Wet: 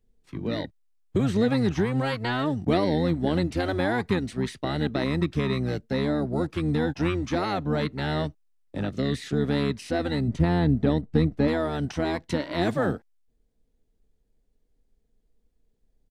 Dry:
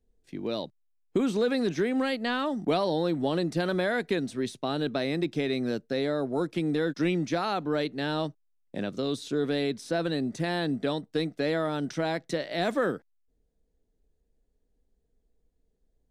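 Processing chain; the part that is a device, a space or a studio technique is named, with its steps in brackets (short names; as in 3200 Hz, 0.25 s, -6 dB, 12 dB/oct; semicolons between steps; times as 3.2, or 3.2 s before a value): 10.28–11.48 tilt -2.5 dB/oct; octave pedal (harmoniser -12 st -1 dB)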